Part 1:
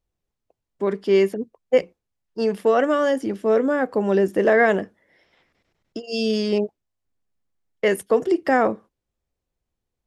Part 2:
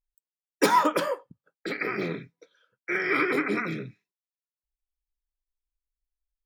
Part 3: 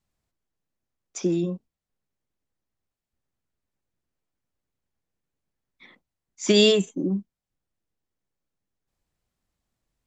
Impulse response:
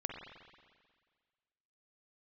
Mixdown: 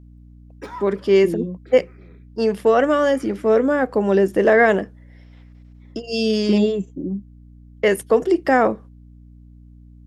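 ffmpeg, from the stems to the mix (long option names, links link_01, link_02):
-filter_complex "[0:a]volume=2.5dB,asplit=2[link_01][link_02];[1:a]lowpass=frequency=2800:poles=1,volume=-13.5dB[link_03];[2:a]tiltshelf=frequency=970:gain=9,volume=-8.5dB[link_04];[link_02]apad=whole_len=284757[link_05];[link_03][link_05]sidechaincompress=threshold=-27dB:ratio=4:attack=31:release=476[link_06];[link_01][link_06][link_04]amix=inputs=3:normalize=0,aeval=exprs='val(0)+0.00708*(sin(2*PI*60*n/s)+sin(2*PI*2*60*n/s)/2+sin(2*PI*3*60*n/s)/3+sin(2*PI*4*60*n/s)/4+sin(2*PI*5*60*n/s)/5)':channel_layout=same"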